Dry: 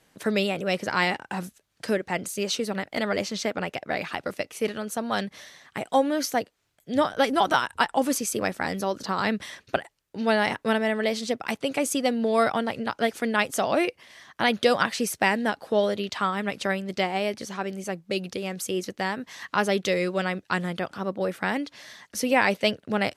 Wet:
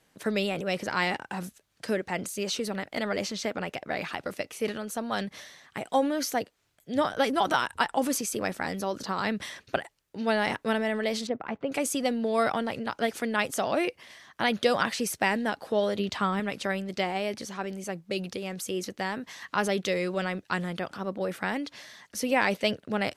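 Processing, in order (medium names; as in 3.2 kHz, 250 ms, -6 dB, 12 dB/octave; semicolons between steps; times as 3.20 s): 11.27–11.72 s: low-pass 1.5 kHz 12 dB/octave; 15.99–16.40 s: bass shelf 360 Hz +8 dB; transient shaper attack +1 dB, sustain +5 dB; trim -4 dB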